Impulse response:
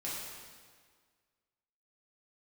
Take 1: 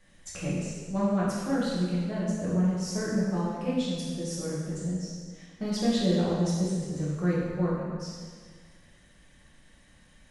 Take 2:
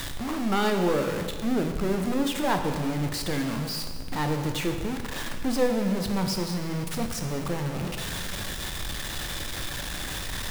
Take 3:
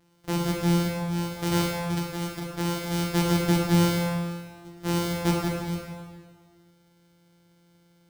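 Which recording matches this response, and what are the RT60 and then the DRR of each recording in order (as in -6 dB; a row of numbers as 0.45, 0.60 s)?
1; 1.7, 1.7, 1.7 s; -7.5, 4.0, -1.5 dB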